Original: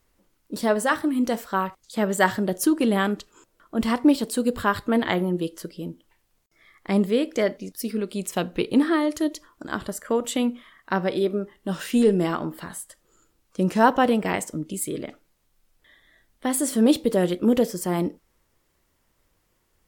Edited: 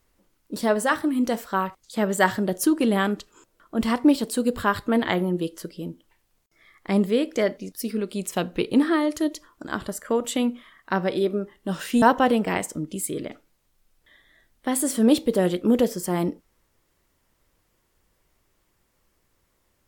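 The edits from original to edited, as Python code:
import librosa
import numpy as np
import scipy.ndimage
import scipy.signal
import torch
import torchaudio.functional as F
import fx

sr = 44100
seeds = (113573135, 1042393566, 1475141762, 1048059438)

y = fx.edit(x, sr, fx.cut(start_s=12.02, length_s=1.78), tone=tone)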